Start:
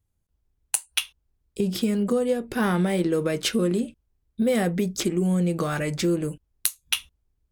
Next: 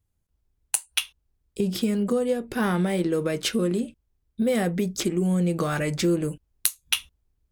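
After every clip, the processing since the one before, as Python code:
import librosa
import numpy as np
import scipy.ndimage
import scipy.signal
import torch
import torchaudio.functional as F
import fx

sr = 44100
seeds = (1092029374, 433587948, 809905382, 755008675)

y = fx.rider(x, sr, range_db=10, speed_s=2.0)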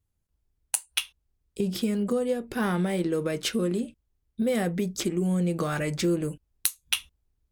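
y = fx.vibrato(x, sr, rate_hz=0.56, depth_cents=5.6)
y = y * 10.0 ** (-2.5 / 20.0)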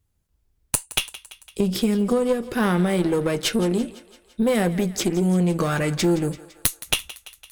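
y = fx.diode_clip(x, sr, knee_db=-23.5)
y = fx.echo_thinned(y, sr, ms=169, feedback_pct=62, hz=470.0, wet_db=-16.5)
y = y * 10.0 ** (7.0 / 20.0)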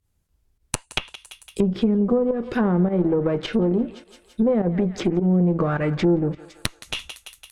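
y = fx.volume_shaper(x, sr, bpm=104, per_beat=1, depth_db=-11, release_ms=92.0, shape='fast start')
y = fx.env_lowpass_down(y, sr, base_hz=780.0, full_db=-17.5)
y = y * 10.0 ** (1.5 / 20.0)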